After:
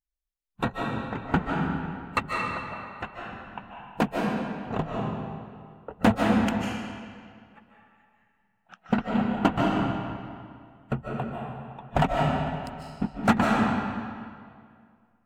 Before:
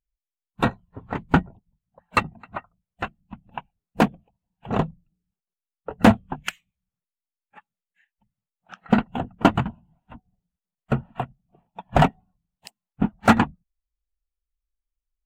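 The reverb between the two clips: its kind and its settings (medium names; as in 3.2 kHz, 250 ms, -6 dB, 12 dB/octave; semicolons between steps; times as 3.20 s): algorithmic reverb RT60 2.1 s, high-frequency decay 0.8×, pre-delay 110 ms, DRR -2 dB; trim -6.5 dB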